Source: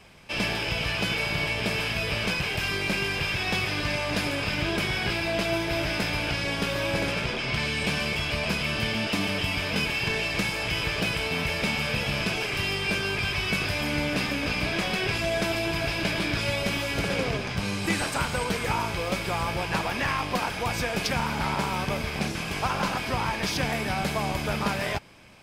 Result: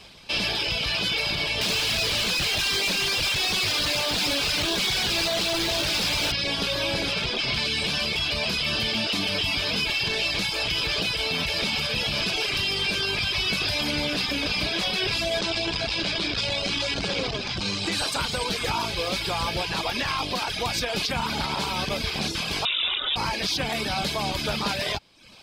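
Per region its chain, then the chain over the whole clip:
0:01.61–0:06.32: mains-hum notches 50/100/150/200/250/300/350/400 Hz + log-companded quantiser 2 bits + highs frequency-modulated by the lows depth 0.1 ms
0:15.39–0:17.92: low-pass filter 8,400 Hz 24 dB per octave + saturating transformer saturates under 370 Hz
0:22.65–0:23.16: linear delta modulator 64 kbit/s, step −31.5 dBFS + voice inversion scrambler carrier 3,700 Hz
whole clip: reverb reduction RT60 0.62 s; octave-band graphic EQ 125/2,000/4,000 Hz −3/−4/+12 dB; brickwall limiter −19.5 dBFS; level +3 dB

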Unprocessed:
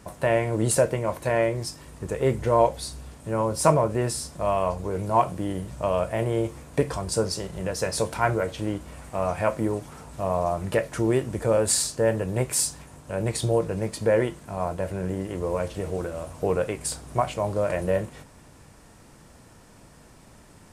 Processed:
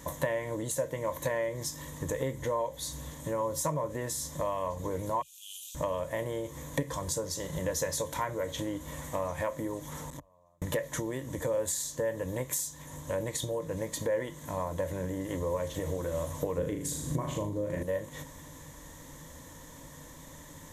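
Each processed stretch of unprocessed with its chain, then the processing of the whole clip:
0:05.22–0:05.75: linear-phase brick-wall high-pass 2,400 Hz + level that may fall only so fast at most 21 dB per second
0:10.10–0:10.62: gate with flip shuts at −23 dBFS, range −41 dB + saturating transformer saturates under 860 Hz
0:16.58–0:17.83: low shelf with overshoot 480 Hz +10 dB, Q 1.5 + flutter between parallel walls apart 6.6 metres, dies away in 0.51 s
whole clip: high-shelf EQ 6,000 Hz +8.5 dB; downward compressor 10 to 1, threshold −30 dBFS; EQ curve with evenly spaced ripples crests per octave 1.1, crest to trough 11 dB

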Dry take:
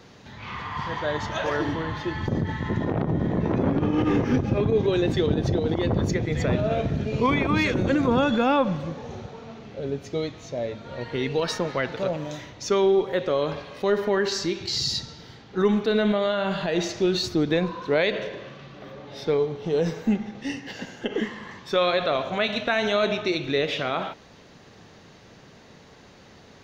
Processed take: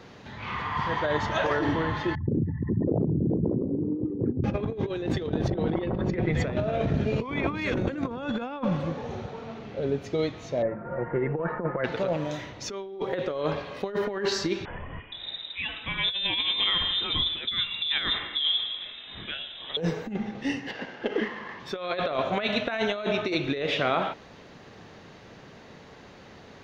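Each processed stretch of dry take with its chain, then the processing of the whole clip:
0:02.15–0:04.44: spectral envelope exaggerated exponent 3 + high-pass filter 83 Hz
0:05.50–0:06.35: low-pass filter 3,000 Hz + comb filter 5.4 ms, depth 45%
0:10.62–0:11.84: Butterworth low-pass 1,800 Hz + comb filter 5.7 ms, depth 53%
0:14.65–0:19.77: multiband delay without the direct sound highs, lows 470 ms, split 750 Hz + voice inversion scrambler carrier 3,800 Hz
0:20.71–0:21.60: variable-slope delta modulation 32 kbit/s + bass and treble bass −8 dB, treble −11 dB
whole clip: bass and treble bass −2 dB, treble −7 dB; compressor whose output falls as the input rises −26 dBFS, ratio −0.5

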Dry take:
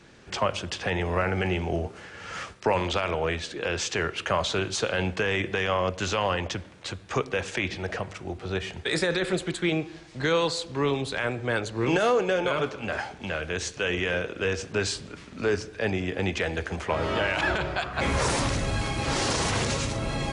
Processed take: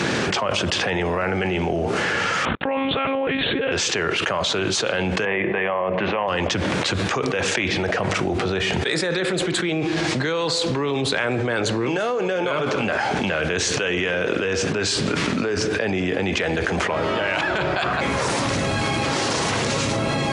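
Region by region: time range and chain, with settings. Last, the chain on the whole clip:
0:02.45–0:03.72: noise gate −47 dBFS, range −50 dB + low-shelf EQ 140 Hz +9 dB + one-pitch LPC vocoder at 8 kHz 270 Hz
0:05.25–0:06.28: loudspeaker in its box 180–2,200 Hz, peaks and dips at 270 Hz −10 dB, 450 Hz −4 dB, 1,400 Hz −10 dB + mains-hum notches 60/120/180/240/300/360/420/480 Hz
whole clip: high-pass filter 130 Hz 12 dB per octave; high-shelf EQ 8,200 Hz −6.5 dB; envelope flattener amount 100%; level −2 dB

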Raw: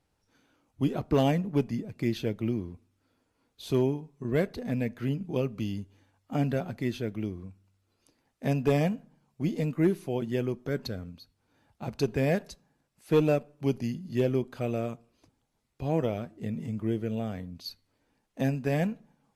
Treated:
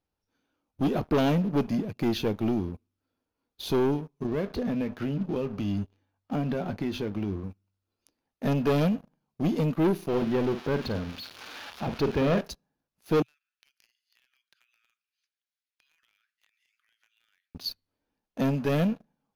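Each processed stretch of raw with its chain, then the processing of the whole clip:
0:04.26–0:07.44: high-shelf EQ 6,900 Hz −10 dB + downward compressor, threshold −30 dBFS + double-tracking delay 20 ms −13 dB
0:10.08–0:12.41: spike at every zero crossing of −24.5 dBFS + low-pass filter 2,500 Hz + double-tracking delay 49 ms −11 dB
0:13.22–0:17.55: Butterworth high-pass 1,500 Hz 48 dB per octave + high-shelf EQ 11,000 Hz −10.5 dB + downward compressor 8 to 1, threshold −58 dBFS
whole clip: leveller curve on the samples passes 3; thirty-one-band graphic EQ 125 Hz −7 dB, 2,000 Hz −4 dB, 8,000 Hz −12 dB; level −4 dB

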